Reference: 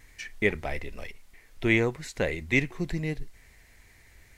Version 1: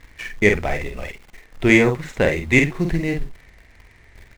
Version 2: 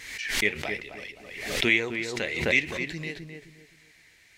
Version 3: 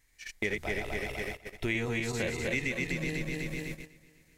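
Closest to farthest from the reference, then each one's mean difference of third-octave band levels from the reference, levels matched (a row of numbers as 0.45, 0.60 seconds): 1, 2, 3; 3.5, 7.5, 10.0 decibels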